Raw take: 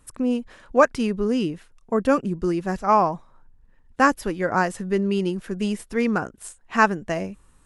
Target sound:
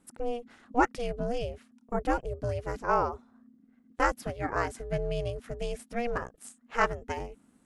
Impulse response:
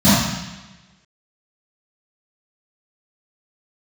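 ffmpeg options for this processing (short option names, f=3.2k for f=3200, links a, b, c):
-af "aeval=exprs='val(0)*sin(2*PI*240*n/s)':c=same,volume=-5.5dB"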